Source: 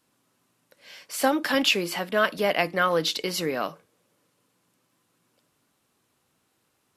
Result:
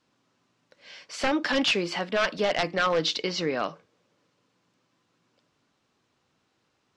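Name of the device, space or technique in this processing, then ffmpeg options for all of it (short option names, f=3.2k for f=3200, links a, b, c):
synthesiser wavefolder: -filter_complex "[0:a]asettb=1/sr,asplit=3[a][b][c];[a]atrim=end=3.174[d];[b]atrim=start=3.17:end=3.68,asetpts=PTS-STARTPTS,afade=t=in:d=0.004:c=qsin,afade=t=out:st=0.506:d=0.004:c=qsin,lowpass=f=6.7k:w=0.5412,lowpass=f=6.7k:w=1.3066[e];[c]atrim=start=3.676[f];[d][e]acrossfade=d=0.004:c1=hsin:c2=qsin[g];[g][f]acrossfade=d=0.004:c1=qsin:c2=hsin,aeval=exprs='0.15*(abs(mod(val(0)/0.15+3,4)-2)-1)':c=same,lowpass=f=6.3k:w=0.5412,lowpass=f=6.3k:w=1.3066"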